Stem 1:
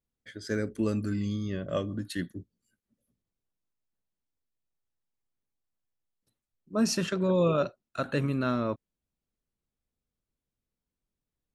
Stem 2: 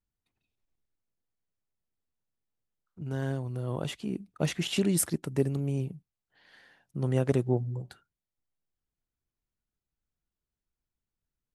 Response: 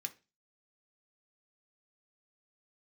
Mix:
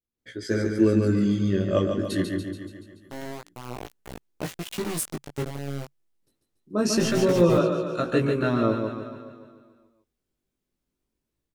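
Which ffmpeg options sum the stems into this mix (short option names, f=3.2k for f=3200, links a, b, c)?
-filter_complex "[0:a]equalizer=f=360:t=o:w=0.63:g=7.5,dynaudnorm=f=130:g=3:m=12dB,volume=-5dB,asplit=2[a][b];[b]volume=-5.5dB[c];[1:a]lowshelf=f=450:g=-2.5,aeval=exprs='val(0)*gte(abs(val(0)),0.0398)':c=same,adynamicequalizer=threshold=0.00501:dfrequency=140:dqfactor=5.6:tfrequency=140:tqfactor=5.6:attack=5:release=100:ratio=0.375:range=1.5:mode=boostabove:tftype=bell,volume=2.5dB[d];[c]aecho=0:1:143|286|429|572|715|858|1001|1144|1287:1|0.59|0.348|0.205|0.121|0.0715|0.0422|0.0249|0.0147[e];[a][d][e]amix=inputs=3:normalize=0,flanger=delay=16.5:depth=4.8:speed=0.25"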